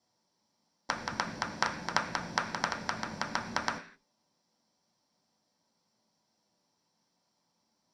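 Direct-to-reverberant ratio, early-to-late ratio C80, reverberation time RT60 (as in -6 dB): 1.5 dB, 15.5 dB, 0.45 s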